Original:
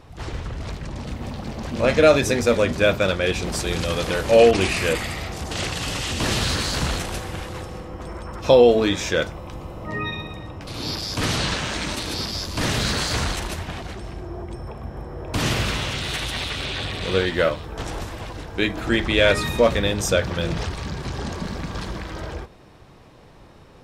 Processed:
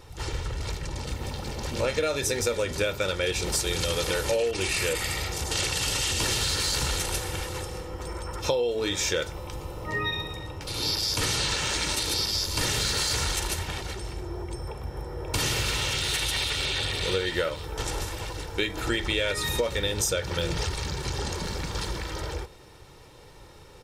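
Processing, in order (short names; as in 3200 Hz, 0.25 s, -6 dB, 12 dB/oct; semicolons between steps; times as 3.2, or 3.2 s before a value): high shelf 3700 Hz +11 dB; comb 2.2 ms, depth 51%; compressor 12:1, threshold -19 dBFS, peak gain reduction 13.5 dB; gain -3.5 dB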